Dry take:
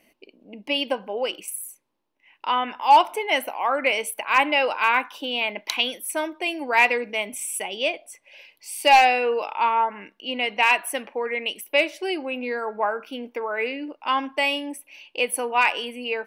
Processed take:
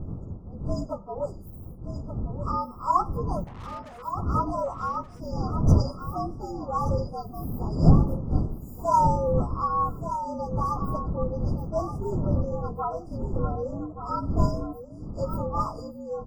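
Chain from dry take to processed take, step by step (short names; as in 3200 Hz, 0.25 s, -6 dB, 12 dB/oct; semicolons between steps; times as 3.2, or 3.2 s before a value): inharmonic rescaling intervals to 115%; wind noise 150 Hz -26 dBFS; brick-wall FIR band-stop 1400–4700 Hz; high shelf 4000 Hz -10.5 dB; 3.44–4.15 tube stage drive 40 dB, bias 0.75; echo 1.177 s -10 dB; gain -2.5 dB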